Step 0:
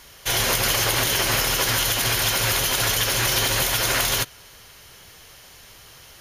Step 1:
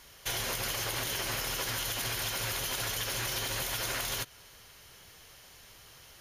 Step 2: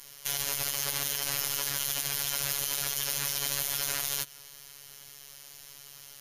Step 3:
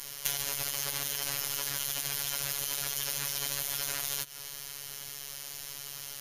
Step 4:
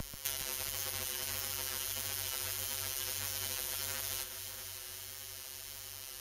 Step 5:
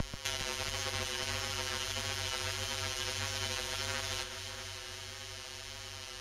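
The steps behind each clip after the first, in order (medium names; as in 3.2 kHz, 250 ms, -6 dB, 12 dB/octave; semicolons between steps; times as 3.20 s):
compression, threshold -23 dBFS, peak gain reduction 6 dB; trim -7.5 dB
treble shelf 4.1 kHz +12 dB; peak limiter -19 dBFS, peak gain reduction 7 dB; robot voice 141 Hz
compression 10:1, threshold -33 dBFS, peak gain reduction 10 dB; trim +7 dB
vibrato 1.6 Hz 39 cents; frequency shift -47 Hz; echo whose repeats swap between lows and highs 136 ms, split 2.4 kHz, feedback 85%, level -8 dB; trim -5.5 dB
distance through air 100 m; trim +7.5 dB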